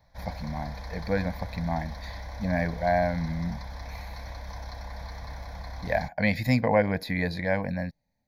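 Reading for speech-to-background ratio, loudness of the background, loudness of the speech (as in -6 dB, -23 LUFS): 12.0 dB, -40.5 LUFS, -28.5 LUFS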